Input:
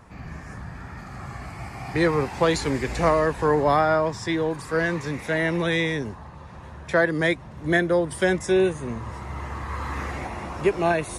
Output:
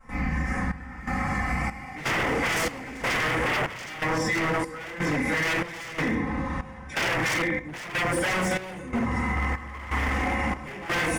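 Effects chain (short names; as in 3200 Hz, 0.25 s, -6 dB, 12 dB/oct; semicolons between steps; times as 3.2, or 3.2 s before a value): comb 3.9 ms, depth 97%; reverb RT60 0.75 s, pre-delay 3 ms, DRR -15.5 dB; wavefolder -4 dBFS; thirty-one-band EQ 125 Hz +10 dB, 2000 Hz +8 dB, 4000 Hz -9 dB; limiter -4 dBFS, peak gain reduction 7.5 dB; low shelf 200 Hz -3 dB; compressor, threshold -15 dBFS, peak gain reduction 6.5 dB; step gate ".xxxxxxx..." 168 bpm -12 dB; gain -8 dB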